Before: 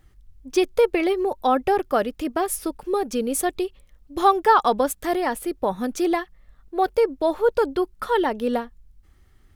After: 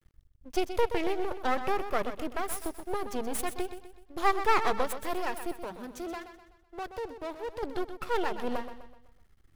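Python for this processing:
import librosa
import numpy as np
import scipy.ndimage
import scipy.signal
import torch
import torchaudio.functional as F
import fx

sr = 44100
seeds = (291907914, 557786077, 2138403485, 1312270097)

y = np.maximum(x, 0.0)
y = fx.tube_stage(y, sr, drive_db=13.0, bias=0.6, at=(5.58, 7.63))
y = fx.echo_feedback(y, sr, ms=126, feedback_pct=43, wet_db=-10.5)
y = y * 10.0 ** (-5.0 / 20.0)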